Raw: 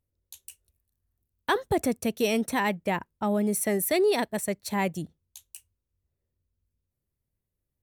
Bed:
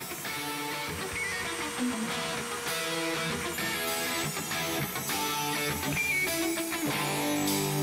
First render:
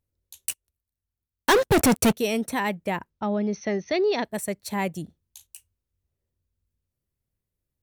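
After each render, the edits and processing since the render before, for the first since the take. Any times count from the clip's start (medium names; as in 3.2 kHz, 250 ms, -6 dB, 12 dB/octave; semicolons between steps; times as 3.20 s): 0.46–2.13 s: waveshaping leveller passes 5; 3.10–4.25 s: brick-wall FIR low-pass 6.4 kHz; 5.04–5.47 s: doubling 38 ms -9 dB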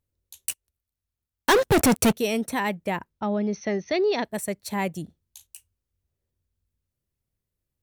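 1.59–2.17 s: upward compressor, threshold -20 dBFS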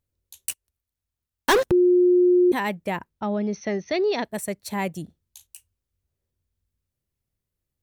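1.71–2.52 s: bleep 358 Hz -13.5 dBFS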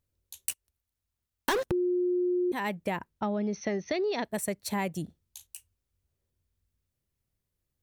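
compression 6:1, threshold -27 dBFS, peak gain reduction 10.5 dB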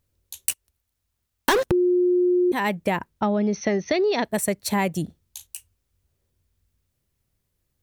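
trim +8 dB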